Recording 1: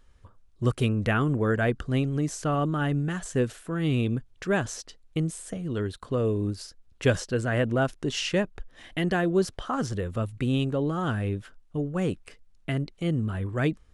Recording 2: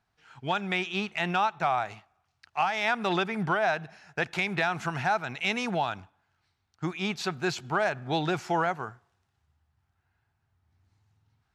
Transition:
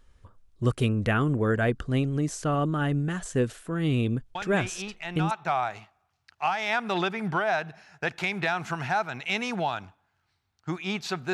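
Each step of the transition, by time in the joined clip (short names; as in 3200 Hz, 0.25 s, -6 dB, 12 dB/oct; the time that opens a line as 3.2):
recording 1
4.35 add recording 2 from 0.5 s 0.96 s -6.5 dB
5.31 switch to recording 2 from 1.46 s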